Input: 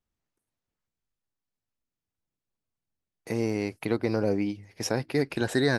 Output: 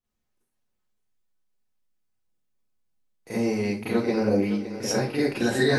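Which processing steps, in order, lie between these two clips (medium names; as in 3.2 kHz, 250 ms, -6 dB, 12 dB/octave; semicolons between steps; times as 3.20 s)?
two-band feedback delay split 330 Hz, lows 220 ms, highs 564 ms, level -12 dB; Schroeder reverb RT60 0.3 s, combs from 30 ms, DRR -9.5 dB; trim -6.5 dB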